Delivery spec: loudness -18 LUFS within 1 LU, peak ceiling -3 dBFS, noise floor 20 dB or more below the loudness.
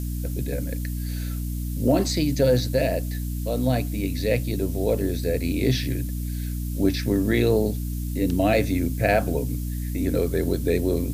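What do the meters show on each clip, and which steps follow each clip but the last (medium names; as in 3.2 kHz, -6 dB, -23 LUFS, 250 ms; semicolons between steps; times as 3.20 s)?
hum 60 Hz; highest harmonic 300 Hz; hum level -26 dBFS; noise floor -29 dBFS; noise floor target -45 dBFS; loudness -24.5 LUFS; peak level -7.5 dBFS; loudness target -18.0 LUFS
-> hum notches 60/120/180/240/300 Hz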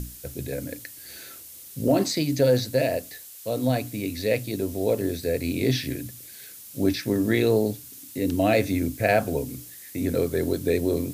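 hum not found; noise floor -44 dBFS; noise floor target -45 dBFS
-> noise reduction 6 dB, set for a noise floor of -44 dBFS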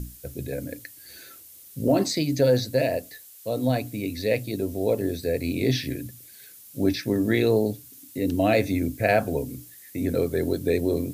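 noise floor -48 dBFS; loudness -25.0 LUFS; peak level -9.0 dBFS; loudness target -18.0 LUFS
-> trim +7 dB; peak limiter -3 dBFS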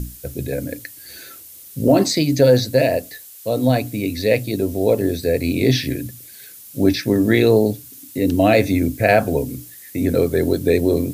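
loudness -18.0 LUFS; peak level -3.0 dBFS; noise floor -41 dBFS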